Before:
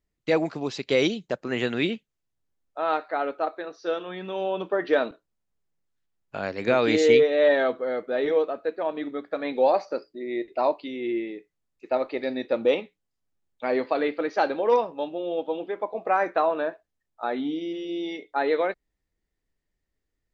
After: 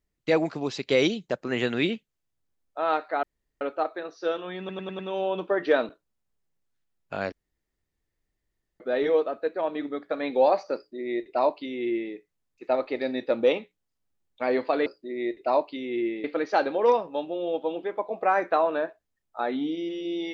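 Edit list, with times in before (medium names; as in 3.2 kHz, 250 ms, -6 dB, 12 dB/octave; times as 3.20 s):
3.23 s: insert room tone 0.38 s
4.21 s: stutter 0.10 s, 5 plays
6.54–8.02 s: room tone
9.97–11.35 s: copy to 14.08 s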